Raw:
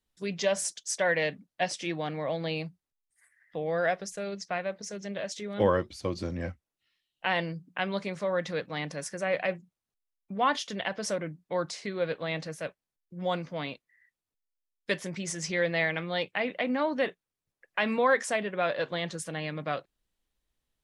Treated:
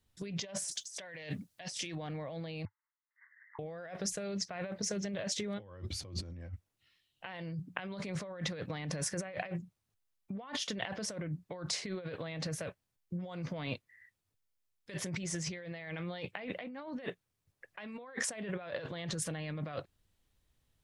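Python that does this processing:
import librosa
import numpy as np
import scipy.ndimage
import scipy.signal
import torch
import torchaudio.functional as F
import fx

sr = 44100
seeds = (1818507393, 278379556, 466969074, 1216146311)

y = fx.high_shelf(x, sr, hz=3100.0, db=12.0, at=(0.71, 1.95))
y = fx.brickwall_bandpass(y, sr, low_hz=840.0, high_hz=2200.0, at=(2.65, 3.59))
y = fx.peak_eq(y, sr, hz=100.0, db=13.0, octaves=1.0)
y = fx.over_compress(y, sr, threshold_db=-38.0, ratio=-1.0)
y = y * librosa.db_to_amplitude(-3.0)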